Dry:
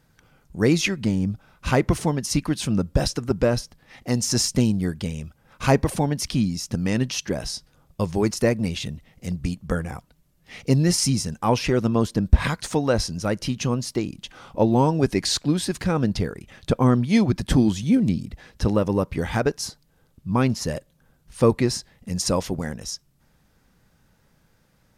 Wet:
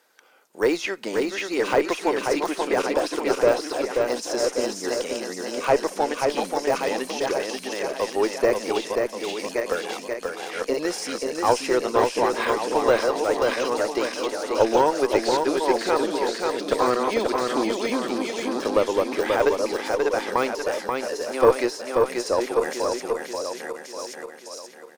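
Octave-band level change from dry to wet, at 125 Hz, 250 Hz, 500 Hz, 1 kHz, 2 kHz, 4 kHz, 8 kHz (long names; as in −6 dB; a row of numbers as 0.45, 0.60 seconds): −20.5, −6.0, +5.0, +6.0, +4.0, −1.5, −4.0 decibels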